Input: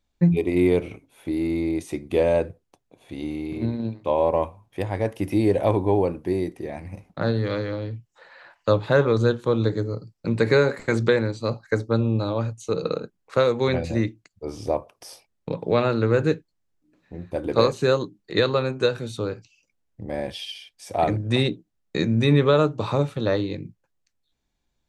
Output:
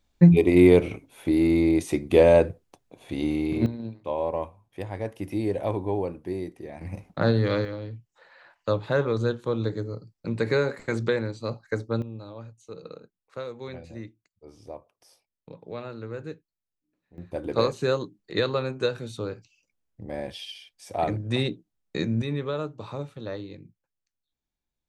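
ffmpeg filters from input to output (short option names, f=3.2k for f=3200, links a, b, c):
-af "asetnsamples=n=441:p=0,asendcmd='3.66 volume volume -7dB;6.81 volume volume 1.5dB;7.65 volume volume -5.5dB;12.02 volume volume -16dB;17.18 volume volume -4.5dB;22.22 volume volume -12dB',volume=4dB"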